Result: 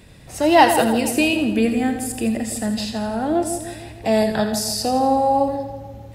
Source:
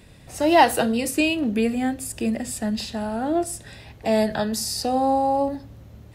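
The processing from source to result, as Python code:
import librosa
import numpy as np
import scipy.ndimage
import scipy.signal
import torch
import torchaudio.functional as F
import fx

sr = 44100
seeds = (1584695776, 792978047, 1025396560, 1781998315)

y = fx.echo_split(x, sr, split_hz=890.0, low_ms=153, high_ms=83, feedback_pct=52, wet_db=-8.5)
y = y * 10.0 ** (2.5 / 20.0)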